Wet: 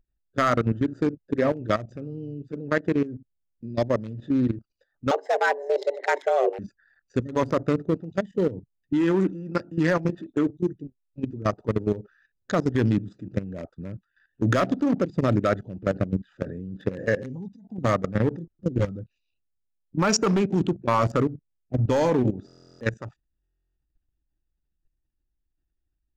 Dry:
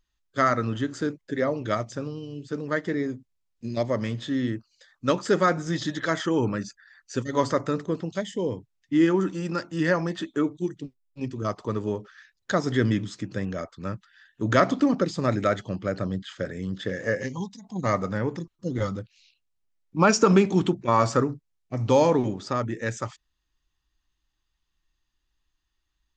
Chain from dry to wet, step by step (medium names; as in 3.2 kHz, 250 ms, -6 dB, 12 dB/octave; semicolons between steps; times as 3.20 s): local Wiener filter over 41 samples; hard clipper -14 dBFS, distortion -17 dB; level held to a coarse grid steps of 14 dB; 5.11–6.59 s: frequency shift +270 Hz; buffer glitch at 22.46/23.42 s, samples 1024, times 14; trim +7.5 dB